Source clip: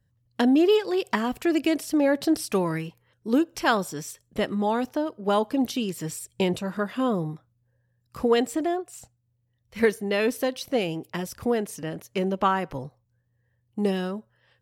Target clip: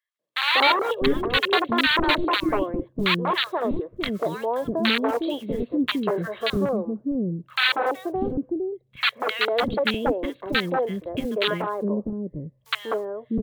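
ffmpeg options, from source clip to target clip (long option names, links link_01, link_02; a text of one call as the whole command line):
ffmpeg -i in.wav -filter_complex "[0:a]equalizer=frequency=270:width=0.62:gain=10,aecho=1:1:2:0.37,aresample=8000,aeval=exprs='(mod(2.99*val(0)+1,2)-1)/2.99':channel_layout=same,aresample=44100,acrusher=bits=8:mode=log:mix=0:aa=0.000001,asetrate=48000,aresample=44100,acrossover=split=380|1200[link_01][link_02][link_03];[link_02]adelay=190[link_04];[link_01]adelay=650[link_05];[link_05][link_04][link_03]amix=inputs=3:normalize=0,volume=-2.5dB" out.wav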